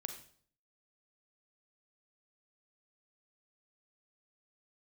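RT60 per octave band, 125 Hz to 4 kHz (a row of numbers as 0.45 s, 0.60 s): 0.65 s, 0.60 s, 0.55 s, 0.50 s, 0.45 s, 0.50 s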